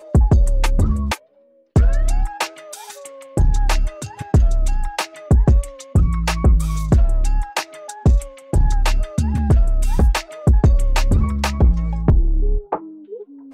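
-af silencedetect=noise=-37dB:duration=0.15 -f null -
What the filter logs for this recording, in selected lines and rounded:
silence_start: 1.17
silence_end: 1.76 | silence_duration: 0.59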